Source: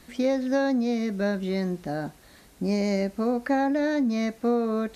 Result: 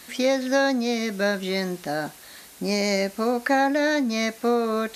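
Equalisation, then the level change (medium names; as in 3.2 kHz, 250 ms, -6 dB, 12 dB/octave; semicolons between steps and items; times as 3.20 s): tilt EQ +3.5 dB/octave; treble shelf 4.2 kHz -6 dB; +6.5 dB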